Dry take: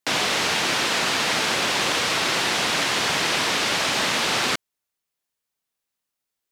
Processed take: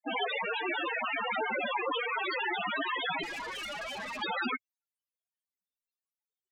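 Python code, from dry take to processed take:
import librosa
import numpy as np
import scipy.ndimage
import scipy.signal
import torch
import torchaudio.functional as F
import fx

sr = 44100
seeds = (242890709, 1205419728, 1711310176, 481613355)

y = fx.spec_topn(x, sr, count=4)
y = fx.tube_stage(y, sr, drive_db=40.0, bias=0.6, at=(3.23, 4.22))
y = y * 10.0 ** (4.0 / 20.0)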